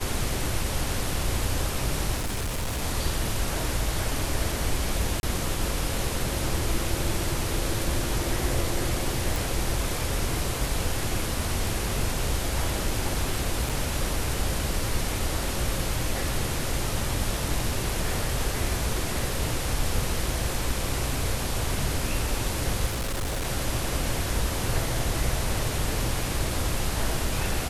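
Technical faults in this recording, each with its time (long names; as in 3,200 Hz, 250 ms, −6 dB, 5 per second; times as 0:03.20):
0:02.16–0:02.83: clipping −25 dBFS
0:05.20–0:05.23: drop-out 31 ms
0:09.36: click
0:13.69–0:13.70: drop-out 5.8 ms
0:22.86–0:23.46: clipping −25 dBFS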